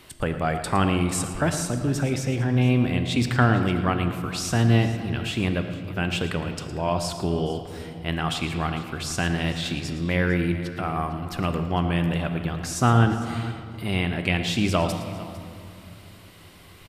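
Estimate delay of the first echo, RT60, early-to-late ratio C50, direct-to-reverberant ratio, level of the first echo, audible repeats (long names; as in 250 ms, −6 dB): 112 ms, 2.5 s, 7.0 dB, 6.5 dB, −13.0 dB, 2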